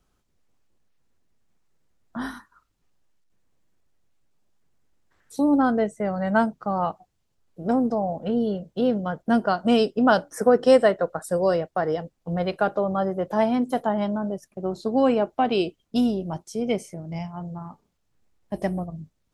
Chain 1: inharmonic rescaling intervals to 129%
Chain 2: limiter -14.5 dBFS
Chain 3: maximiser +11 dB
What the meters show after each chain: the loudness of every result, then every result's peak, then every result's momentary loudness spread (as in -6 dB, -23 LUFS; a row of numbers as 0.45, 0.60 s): -26.0, -26.5, -14.0 LUFS; -7.0, -14.5, -1.0 dBFS; 14, 11, 12 LU